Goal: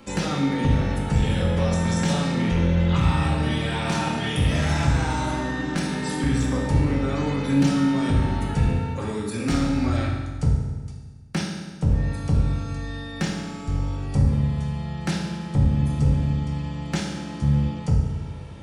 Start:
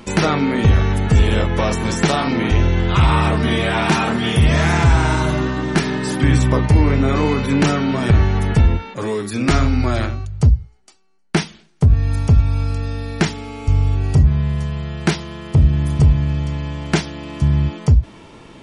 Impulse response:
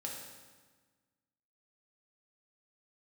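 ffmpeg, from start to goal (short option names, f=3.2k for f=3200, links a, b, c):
-filter_complex "[0:a]acrossover=split=220|3000[a][b][c];[b]acompressor=threshold=-21dB:ratio=6[d];[a][d][c]amix=inputs=3:normalize=0,aeval=exprs='clip(val(0),-1,0.251)':c=same[e];[1:a]atrim=start_sample=2205[f];[e][f]afir=irnorm=-1:irlink=0,volume=-4dB"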